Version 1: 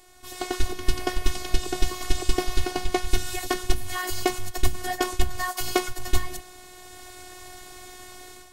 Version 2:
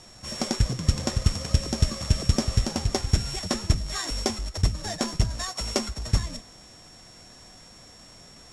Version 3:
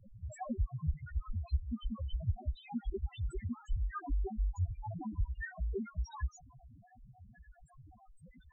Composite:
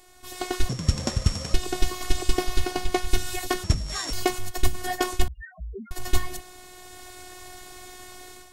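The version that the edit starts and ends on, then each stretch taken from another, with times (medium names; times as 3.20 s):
1
0.69–1.54 s: from 2
3.64–4.13 s: from 2
5.28–5.91 s: from 3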